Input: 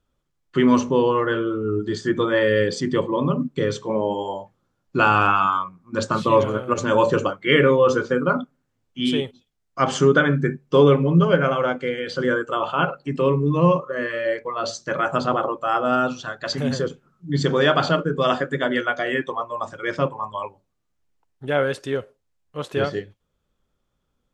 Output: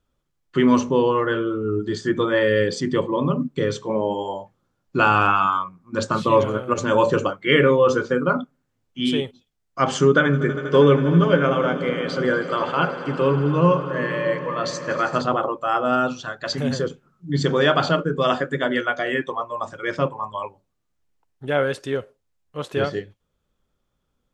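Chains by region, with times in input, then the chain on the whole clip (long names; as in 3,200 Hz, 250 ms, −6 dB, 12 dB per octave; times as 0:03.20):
0:10.01–0:15.22: notch filter 720 Hz, Q 19 + echo that builds up and dies away 80 ms, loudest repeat 5, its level −18 dB
whole clip: no processing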